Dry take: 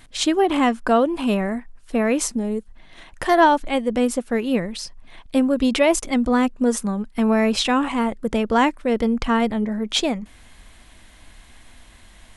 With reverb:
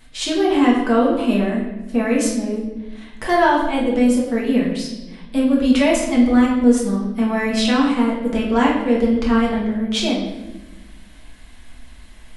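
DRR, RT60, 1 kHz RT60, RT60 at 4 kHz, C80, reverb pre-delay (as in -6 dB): -4.5 dB, 1.1 s, 0.85 s, 0.85 s, 6.5 dB, 5 ms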